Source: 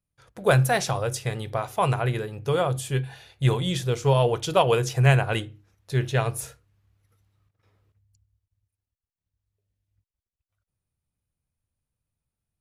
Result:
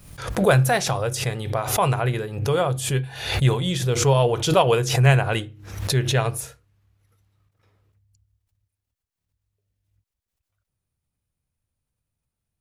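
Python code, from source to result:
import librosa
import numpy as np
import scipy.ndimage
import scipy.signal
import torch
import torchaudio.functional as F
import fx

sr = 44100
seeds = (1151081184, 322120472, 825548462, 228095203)

y = fx.pre_swell(x, sr, db_per_s=75.0)
y = y * librosa.db_to_amplitude(2.0)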